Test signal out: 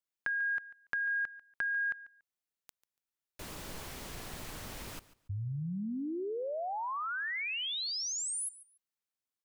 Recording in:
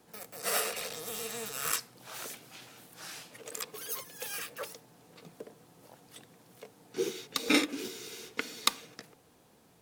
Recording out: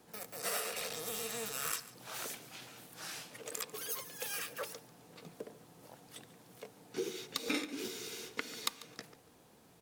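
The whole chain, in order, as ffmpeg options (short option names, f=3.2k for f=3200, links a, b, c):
-af "acompressor=threshold=-35dB:ratio=3,aecho=1:1:143|286:0.126|0.0264"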